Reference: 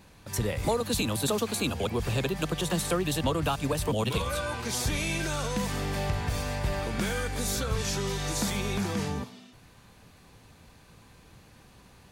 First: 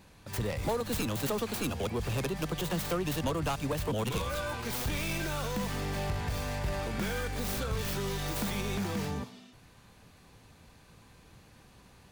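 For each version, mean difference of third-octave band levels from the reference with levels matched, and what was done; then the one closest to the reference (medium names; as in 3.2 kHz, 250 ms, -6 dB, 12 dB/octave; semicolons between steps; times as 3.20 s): 1.5 dB: tracing distortion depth 0.33 ms; in parallel at -11 dB: wavefolder -28 dBFS; on the sum: trim -4.5 dB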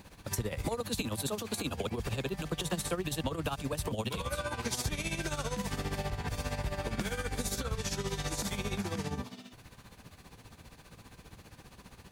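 3.0 dB: compression 4:1, threshold -34 dBFS, peak gain reduction 10 dB; added noise white -77 dBFS; tremolo 15 Hz, depth 72%; trim +4.5 dB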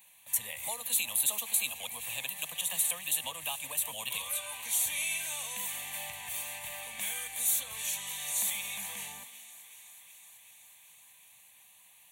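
13.0 dB: differentiator; static phaser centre 1.4 kHz, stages 6; on a send: thinning echo 375 ms, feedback 76%, level -17.5 dB; on the sum: trim +8 dB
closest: first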